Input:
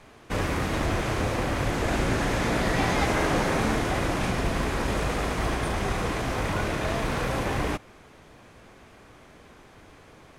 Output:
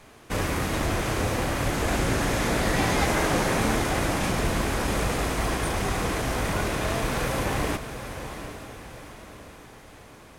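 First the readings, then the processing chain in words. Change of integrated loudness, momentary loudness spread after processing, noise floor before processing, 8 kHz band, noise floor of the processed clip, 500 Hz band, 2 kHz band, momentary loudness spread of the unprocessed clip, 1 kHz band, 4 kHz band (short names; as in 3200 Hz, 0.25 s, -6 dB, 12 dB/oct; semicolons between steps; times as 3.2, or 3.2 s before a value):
+1.0 dB, 17 LU, -52 dBFS, +5.5 dB, -48 dBFS, +0.5 dB, +1.0 dB, 4 LU, +0.5 dB, +2.5 dB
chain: high shelf 8100 Hz +11 dB; on a send: diffused feedback echo 0.763 s, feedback 47%, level -10 dB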